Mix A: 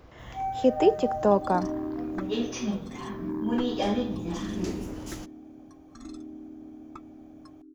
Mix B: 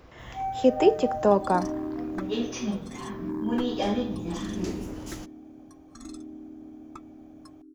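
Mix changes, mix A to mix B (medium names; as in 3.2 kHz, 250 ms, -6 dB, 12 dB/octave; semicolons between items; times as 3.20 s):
speech: send on; second sound: remove distance through air 76 m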